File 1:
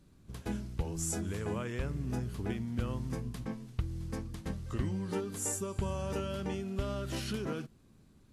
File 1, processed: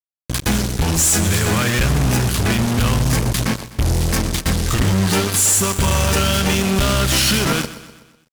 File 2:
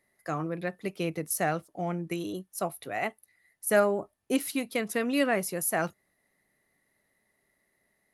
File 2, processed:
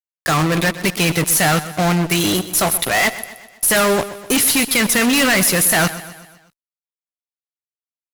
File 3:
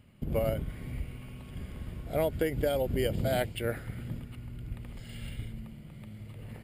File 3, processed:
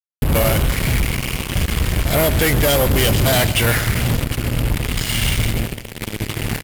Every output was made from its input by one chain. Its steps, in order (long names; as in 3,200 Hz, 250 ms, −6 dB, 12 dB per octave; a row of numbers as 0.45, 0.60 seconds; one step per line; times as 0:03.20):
guitar amp tone stack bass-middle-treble 5-5-5
fuzz pedal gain 60 dB, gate −57 dBFS
repeating echo 125 ms, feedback 52%, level −15 dB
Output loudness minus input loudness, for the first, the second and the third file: +20.0, +15.0, +16.0 LU